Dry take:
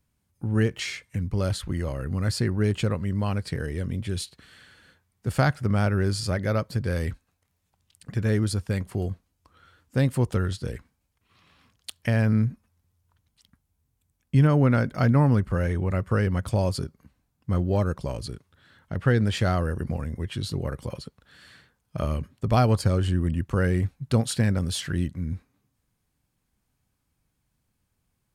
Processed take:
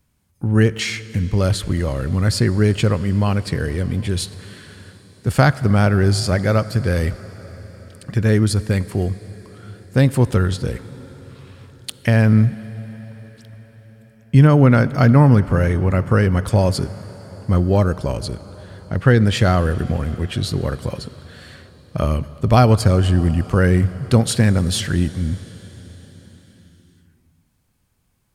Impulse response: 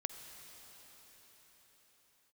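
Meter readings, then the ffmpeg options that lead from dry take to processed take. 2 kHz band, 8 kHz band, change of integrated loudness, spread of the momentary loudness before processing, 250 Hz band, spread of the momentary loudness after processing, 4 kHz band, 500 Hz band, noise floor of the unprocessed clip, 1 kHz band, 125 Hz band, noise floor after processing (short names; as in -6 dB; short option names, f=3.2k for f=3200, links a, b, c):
+8.0 dB, +8.0 dB, +8.0 dB, 13 LU, +8.0 dB, 16 LU, +8.0 dB, +8.0 dB, -76 dBFS, +8.0 dB, +8.0 dB, -60 dBFS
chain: -filter_complex "[0:a]asplit=2[a][b];[1:a]atrim=start_sample=2205[c];[b][c]afir=irnorm=-1:irlink=0,volume=-4.5dB[d];[a][d]amix=inputs=2:normalize=0,volume=4.5dB"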